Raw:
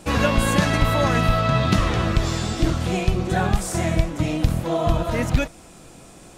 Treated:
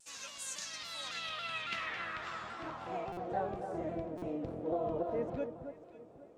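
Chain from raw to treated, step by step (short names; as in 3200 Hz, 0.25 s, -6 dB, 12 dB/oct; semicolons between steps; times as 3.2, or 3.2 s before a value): band-pass sweep 6800 Hz -> 460 Hz, 0.51–3.64; on a send: echo with dull and thin repeats by turns 0.271 s, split 1600 Hz, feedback 51%, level -7.5 dB; on the sum: stuck buffer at 3.12/4.17, samples 256, times 8; shaped vibrato saw down 3.6 Hz, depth 100 cents; gain -6.5 dB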